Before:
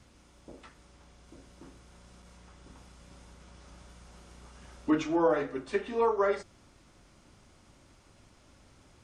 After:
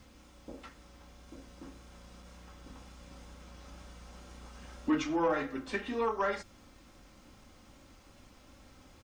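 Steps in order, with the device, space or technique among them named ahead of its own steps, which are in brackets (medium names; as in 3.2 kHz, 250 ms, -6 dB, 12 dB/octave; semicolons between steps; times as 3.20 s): comb 3.8 ms, depth 38%; dynamic bell 480 Hz, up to -7 dB, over -40 dBFS, Q 0.9; compact cassette (saturation -21.5 dBFS, distortion -20 dB; low-pass 8 kHz 12 dB/octave; wow and flutter 28 cents; white noise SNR 37 dB); trim +1.5 dB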